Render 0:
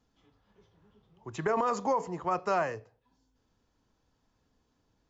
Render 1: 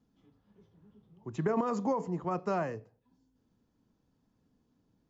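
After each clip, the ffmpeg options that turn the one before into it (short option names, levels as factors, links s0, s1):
-af "equalizer=f=200:w=0.61:g=13.5,volume=0.422"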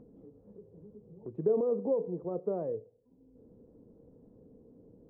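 -af "lowpass=f=480:t=q:w=4.9,acompressor=mode=upward:threshold=0.02:ratio=2.5,volume=0.473"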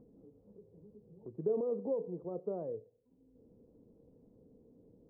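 -af "lowpass=1300,volume=0.562"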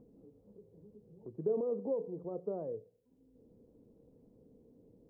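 -af "bandreject=f=89.12:t=h:w=4,bandreject=f=178.24:t=h:w=4"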